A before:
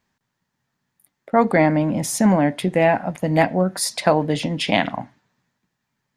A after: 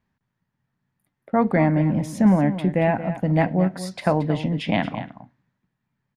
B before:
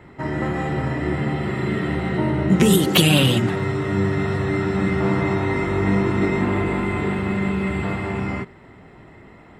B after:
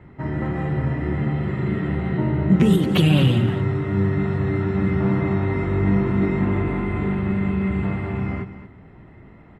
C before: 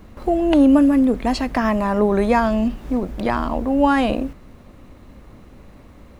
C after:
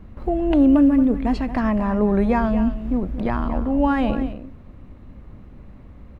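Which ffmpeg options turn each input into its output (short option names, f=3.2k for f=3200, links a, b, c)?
-filter_complex "[0:a]bass=f=250:g=8,treble=f=4k:g=-12,asplit=2[a][b];[b]aecho=0:1:227:0.237[c];[a][c]amix=inputs=2:normalize=0,volume=-5dB"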